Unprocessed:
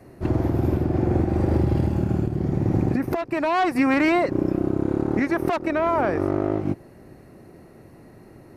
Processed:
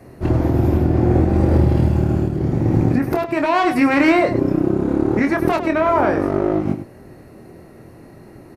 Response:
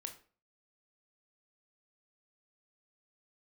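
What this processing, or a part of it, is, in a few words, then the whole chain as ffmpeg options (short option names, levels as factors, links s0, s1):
slapback doubling: -filter_complex "[0:a]asplit=3[s0][s1][s2];[s1]adelay=25,volume=0.501[s3];[s2]adelay=102,volume=0.299[s4];[s0][s3][s4]amix=inputs=3:normalize=0,volume=1.58"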